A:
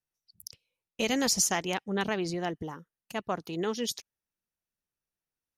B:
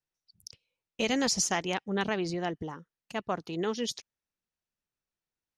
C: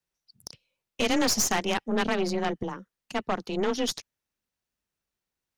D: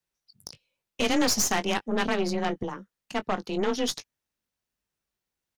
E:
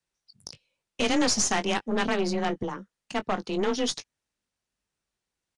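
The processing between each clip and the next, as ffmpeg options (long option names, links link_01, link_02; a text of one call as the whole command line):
ffmpeg -i in.wav -af "lowpass=6700" out.wav
ffmpeg -i in.wav -af "afreqshift=23,aeval=exprs='(tanh(22.4*val(0)+0.65)-tanh(0.65))/22.4':channel_layout=same,volume=8dB" out.wav
ffmpeg -i in.wav -filter_complex "[0:a]asplit=2[link_01][link_02];[link_02]adelay=20,volume=-12.5dB[link_03];[link_01][link_03]amix=inputs=2:normalize=0" out.wav
ffmpeg -i in.wav -filter_complex "[0:a]asplit=2[link_01][link_02];[link_02]volume=31dB,asoftclip=hard,volume=-31dB,volume=-8dB[link_03];[link_01][link_03]amix=inputs=2:normalize=0,aresample=22050,aresample=44100,volume=-1dB" out.wav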